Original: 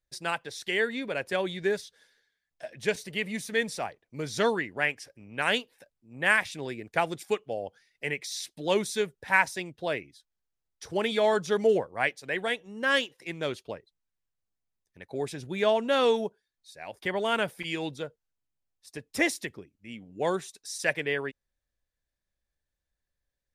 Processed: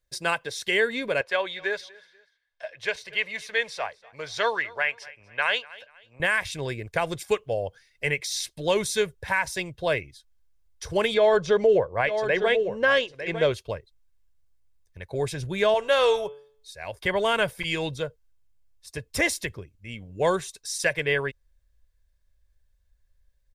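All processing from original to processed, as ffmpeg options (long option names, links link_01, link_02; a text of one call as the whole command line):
ffmpeg -i in.wav -filter_complex "[0:a]asettb=1/sr,asplit=3[link_01][link_02][link_03];[link_01]atrim=end=1.214[link_04];[link_02]atrim=start=1.21:end=6.2,asetpts=PTS-STARTPTS,afade=type=in:duration=0.004:curve=qsin,afade=type=out:start_time=4.986:duration=0.004:curve=qsin,acrossover=split=530 5000:gain=0.126 1 0.141[link_05][link_06][link_07];[link_05][link_06][link_07]amix=inputs=3:normalize=0,aecho=1:1:242|484:0.0708|0.0234,atrim=end_sample=220059[link_08];[link_03]atrim=start=6.196[link_09];[link_04][link_08]acrossfade=duration=0.004:curve1=hsin:curve2=qsin[link_10];[link_10][link_09]acrossfade=duration=0.004:curve1=qsin:curve2=hsin,asettb=1/sr,asplit=3[link_11][link_12][link_13];[link_11]atrim=end=11.144[link_14];[link_12]atrim=start=11.14:end=13.52,asetpts=PTS-STARTPTS,afade=type=in:duration=0.004:curve=qsin,afade=type=out:start_time=2.376:duration=0.004:curve=qsin,lowpass=4900,equalizer=frequency=490:width_type=o:width=1.4:gain=5.5,aecho=1:1:902:0.251,atrim=end_sample=104958[link_15];[link_13]atrim=start=13.516[link_16];[link_14][link_15]acrossfade=duration=0.004:curve1=hsin:curve2=qsin[link_17];[link_17][link_16]acrossfade=duration=0.004:curve1=qsin:curve2=hsin,asettb=1/sr,asplit=3[link_18][link_19][link_20];[link_18]atrim=end=15.744[link_21];[link_19]atrim=start=15.74:end=16.84,asetpts=PTS-STARTPTS,afade=type=in:duration=0.004:curve=qsin,afade=type=out:start_time=1.096:duration=0.004:curve=qsin,equalizer=frequency=230:width=2:gain=-14.5,bandreject=frequency=143.8:width_type=h:width=4,bandreject=frequency=287.6:width_type=h:width=4,bandreject=frequency=431.4:width_type=h:width=4,bandreject=frequency=575.2:width_type=h:width=4,bandreject=frequency=719:width_type=h:width=4,bandreject=frequency=862.8:width_type=h:width=4,bandreject=frequency=1006.6:width_type=h:width=4,bandreject=frequency=1150.4:width_type=h:width=4,bandreject=frequency=1294.2:width_type=h:width=4,bandreject=frequency=1438:width_type=h:width=4,bandreject=frequency=1581.8:width_type=h:width=4,bandreject=frequency=1725.6:width_type=h:width=4,bandreject=frequency=1869.4:width_type=h:width=4,bandreject=frequency=2013.2:width_type=h:width=4,bandreject=frequency=2157:width_type=h:width=4,bandreject=frequency=2300.8:width_type=h:width=4,bandreject=frequency=2444.6:width_type=h:width=4,bandreject=frequency=2588.4:width_type=h:width=4,bandreject=frequency=2732.2:width_type=h:width=4,bandreject=frequency=2876:width_type=h:width=4,bandreject=frequency=3019.8:width_type=h:width=4,bandreject=frequency=3163.6:width_type=h:width=4,bandreject=frequency=3307.4:width_type=h:width=4,bandreject=frequency=3451.2:width_type=h:width=4[link_22];[link_20]atrim=start=16.836[link_23];[link_21][link_22]acrossfade=duration=0.004:curve1=hsin:curve2=qsin[link_24];[link_24][link_23]acrossfade=duration=0.004:curve1=qsin:curve2=hsin,asubboost=boost=5.5:cutoff=94,aecho=1:1:1.9:0.31,alimiter=limit=-17.5dB:level=0:latency=1:release=125,volume=5.5dB" out.wav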